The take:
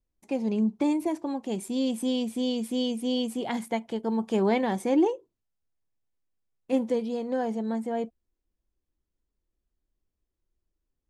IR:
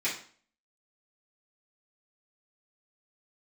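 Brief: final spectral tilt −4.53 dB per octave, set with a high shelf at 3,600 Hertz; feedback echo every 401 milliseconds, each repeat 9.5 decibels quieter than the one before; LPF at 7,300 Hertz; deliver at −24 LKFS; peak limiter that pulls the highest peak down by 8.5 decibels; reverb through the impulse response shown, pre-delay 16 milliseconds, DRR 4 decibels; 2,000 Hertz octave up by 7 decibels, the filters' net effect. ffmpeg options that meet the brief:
-filter_complex "[0:a]lowpass=7300,equalizer=frequency=2000:width_type=o:gain=6,highshelf=frequency=3600:gain=8,alimiter=limit=-20dB:level=0:latency=1,aecho=1:1:401|802|1203|1604:0.335|0.111|0.0365|0.012,asplit=2[link_01][link_02];[1:a]atrim=start_sample=2205,adelay=16[link_03];[link_02][link_03]afir=irnorm=-1:irlink=0,volume=-12.5dB[link_04];[link_01][link_04]amix=inputs=2:normalize=0,volume=4.5dB"

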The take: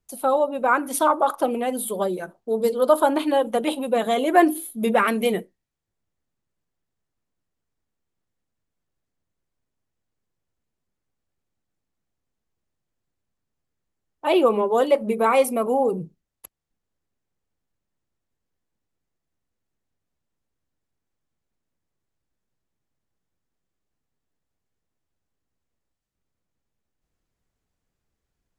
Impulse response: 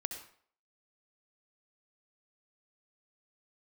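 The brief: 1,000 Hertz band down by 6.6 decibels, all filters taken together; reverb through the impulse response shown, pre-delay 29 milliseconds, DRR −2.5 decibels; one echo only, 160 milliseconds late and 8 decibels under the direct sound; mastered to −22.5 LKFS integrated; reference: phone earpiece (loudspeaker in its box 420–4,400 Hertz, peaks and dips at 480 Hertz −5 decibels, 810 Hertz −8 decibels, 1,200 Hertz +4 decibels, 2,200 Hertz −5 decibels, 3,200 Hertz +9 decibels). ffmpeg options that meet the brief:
-filter_complex "[0:a]equalizer=frequency=1000:width_type=o:gain=-6.5,aecho=1:1:160:0.398,asplit=2[link_01][link_02];[1:a]atrim=start_sample=2205,adelay=29[link_03];[link_02][link_03]afir=irnorm=-1:irlink=0,volume=2.5dB[link_04];[link_01][link_04]amix=inputs=2:normalize=0,highpass=420,equalizer=frequency=480:width_type=q:width=4:gain=-5,equalizer=frequency=810:width_type=q:width=4:gain=-8,equalizer=frequency=1200:width_type=q:width=4:gain=4,equalizer=frequency=2200:width_type=q:width=4:gain=-5,equalizer=frequency=3200:width_type=q:width=4:gain=9,lowpass=frequency=4400:width=0.5412,lowpass=frequency=4400:width=1.3066,volume=-0.5dB"

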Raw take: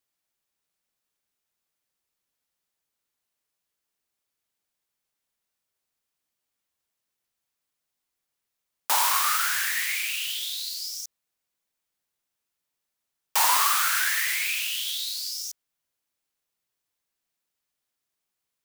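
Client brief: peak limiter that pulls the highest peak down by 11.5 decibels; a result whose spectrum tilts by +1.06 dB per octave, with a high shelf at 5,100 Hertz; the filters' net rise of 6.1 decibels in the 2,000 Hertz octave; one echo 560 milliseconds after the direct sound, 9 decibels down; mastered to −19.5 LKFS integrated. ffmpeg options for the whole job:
ffmpeg -i in.wav -af "equalizer=frequency=2000:width_type=o:gain=7,highshelf=frequency=5100:gain=4,alimiter=limit=-17.5dB:level=0:latency=1,aecho=1:1:560:0.355,volume=6dB" out.wav

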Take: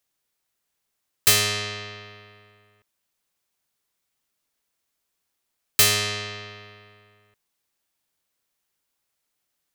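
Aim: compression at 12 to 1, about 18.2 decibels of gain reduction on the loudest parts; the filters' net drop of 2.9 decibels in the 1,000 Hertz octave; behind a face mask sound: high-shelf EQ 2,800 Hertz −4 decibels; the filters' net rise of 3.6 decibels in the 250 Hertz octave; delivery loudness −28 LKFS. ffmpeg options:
ffmpeg -i in.wav -af "equalizer=frequency=250:width_type=o:gain=5,equalizer=frequency=1000:width_type=o:gain=-3.5,acompressor=threshold=-31dB:ratio=12,highshelf=frequency=2800:gain=-4,volume=10.5dB" out.wav

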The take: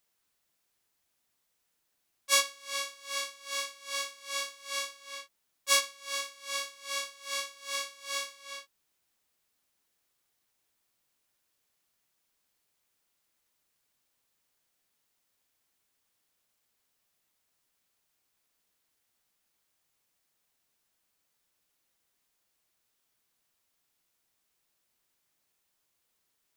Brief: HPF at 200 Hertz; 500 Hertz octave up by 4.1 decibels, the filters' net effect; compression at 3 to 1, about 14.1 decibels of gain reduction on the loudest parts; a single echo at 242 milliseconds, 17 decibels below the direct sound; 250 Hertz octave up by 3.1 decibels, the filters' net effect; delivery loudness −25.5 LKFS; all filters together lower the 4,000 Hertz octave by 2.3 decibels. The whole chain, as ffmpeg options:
ffmpeg -i in.wav -af "highpass=200,equalizer=frequency=250:width_type=o:gain=3.5,equalizer=frequency=500:width_type=o:gain=4,equalizer=frequency=4000:width_type=o:gain=-3,acompressor=threshold=-38dB:ratio=3,aecho=1:1:242:0.141,volume=16.5dB" out.wav

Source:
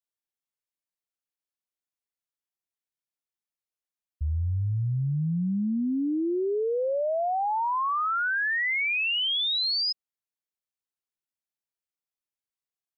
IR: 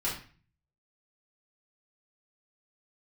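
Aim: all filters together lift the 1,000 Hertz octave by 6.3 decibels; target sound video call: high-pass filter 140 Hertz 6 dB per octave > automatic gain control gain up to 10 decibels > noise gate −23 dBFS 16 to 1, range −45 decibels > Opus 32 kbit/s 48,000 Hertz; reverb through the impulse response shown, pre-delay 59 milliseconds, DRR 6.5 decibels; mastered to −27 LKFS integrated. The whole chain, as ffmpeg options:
-filter_complex "[0:a]equalizer=frequency=1000:width_type=o:gain=8,asplit=2[link_01][link_02];[1:a]atrim=start_sample=2205,adelay=59[link_03];[link_02][link_03]afir=irnorm=-1:irlink=0,volume=-13dB[link_04];[link_01][link_04]amix=inputs=2:normalize=0,highpass=frequency=140:poles=1,dynaudnorm=maxgain=10dB,agate=range=-45dB:threshold=-23dB:ratio=16,volume=-4dB" -ar 48000 -c:a libopus -b:a 32k

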